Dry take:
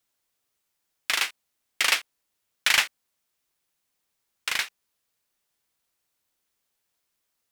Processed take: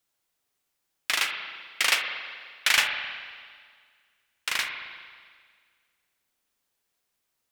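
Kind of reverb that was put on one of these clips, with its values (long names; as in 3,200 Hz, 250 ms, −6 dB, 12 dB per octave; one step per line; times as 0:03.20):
spring reverb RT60 1.8 s, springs 38/53 ms, chirp 30 ms, DRR 4 dB
level −1 dB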